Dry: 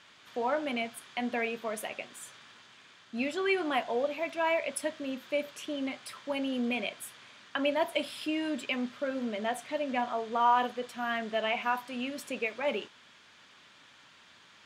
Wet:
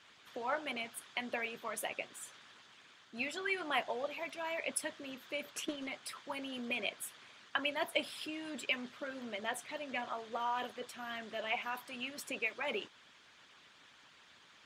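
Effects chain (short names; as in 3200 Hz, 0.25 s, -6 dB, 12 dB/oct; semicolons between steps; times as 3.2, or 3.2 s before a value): 5.5–5.92 transient shaper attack +6 dB, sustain -2 dB; harmonic-percussive split harmonic -12 dB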